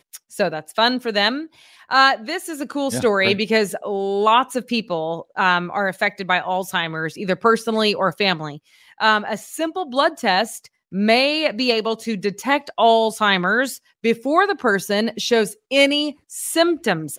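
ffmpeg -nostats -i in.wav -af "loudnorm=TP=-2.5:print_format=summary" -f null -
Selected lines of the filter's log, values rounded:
Input Integrated:    -19.4 LUFS
Input True Peak:      -2.7 dBTP
Input LRA:             2.0 LU
Input Threshold:     -29.6 LUFS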